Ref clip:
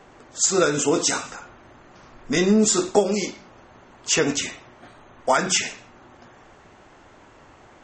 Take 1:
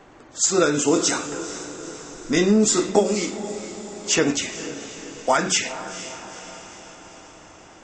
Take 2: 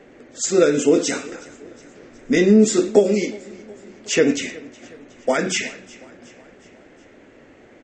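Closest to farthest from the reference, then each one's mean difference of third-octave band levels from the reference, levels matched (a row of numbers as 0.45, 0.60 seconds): 2, 1; 4.5, 5.5 decibels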